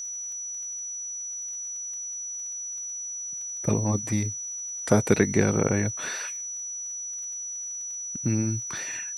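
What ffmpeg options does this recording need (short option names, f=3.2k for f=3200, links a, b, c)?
-af "adeclick=t=4,bandreject=f=5.9k:w=30,agate=range=-21dB:threshold=-27dB"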